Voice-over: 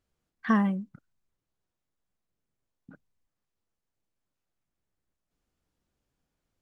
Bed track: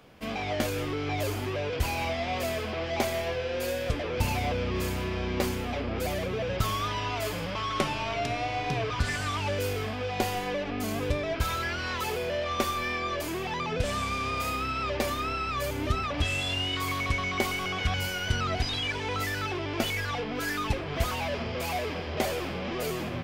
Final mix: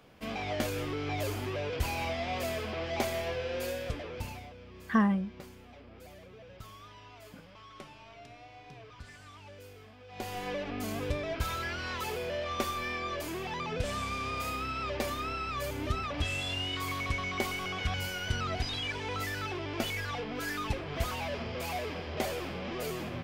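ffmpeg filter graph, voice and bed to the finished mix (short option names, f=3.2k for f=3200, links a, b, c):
-filter_complex "[0:a]adelay=4450,volume=-1.5dB[a];[1:a]volume=12.5dB,afade=t=out:st=3.56:d=0.95:silence=0.141254,afade=t=in:st=10.07:d=0.41:silence=0.158489[b];[a][b]amix=inputs=2:normalize=0"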